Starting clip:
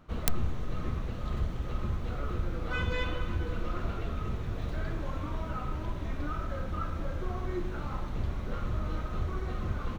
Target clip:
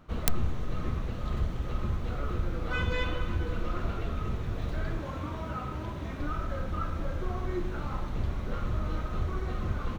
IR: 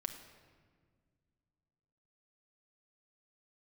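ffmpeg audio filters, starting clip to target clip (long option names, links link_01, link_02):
-filter_complex "[0:a]asettb=1/sr,asplit=3[link_01][link_02][link_03];[link_01]atrim=end=4.994[link_04];[link_02]atrim=start=4.99:end=6.2,asetpts=PTS-STARTPTS,afade=type=in:duration=0.004:curve=qsin,afade=type=out:start_time=1.206:duration=0.004:curve=qsin,highpass=63[link_05];[link_03]atrim=start=6.196[link_06];[link_04][link_05]acrossfade=duration=0.004:curve1=hsin:curve2=qsin[link_07];[link_07][link_06]acrossfade=duration=0.004:curve1=qsin:curve2=hsin,volume=1.5dB"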